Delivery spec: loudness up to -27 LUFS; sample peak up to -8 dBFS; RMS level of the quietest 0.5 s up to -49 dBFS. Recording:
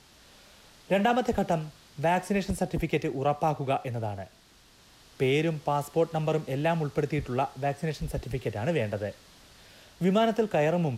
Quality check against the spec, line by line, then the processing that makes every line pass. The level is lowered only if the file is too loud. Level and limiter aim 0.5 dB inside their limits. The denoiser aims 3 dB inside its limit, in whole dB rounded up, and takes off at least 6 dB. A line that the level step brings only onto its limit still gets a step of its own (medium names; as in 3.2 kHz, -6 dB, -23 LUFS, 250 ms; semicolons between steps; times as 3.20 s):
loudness -28.5 LUFS: pass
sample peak -14.0 dBFS: pass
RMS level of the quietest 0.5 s -58 dBFS: pass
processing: none needed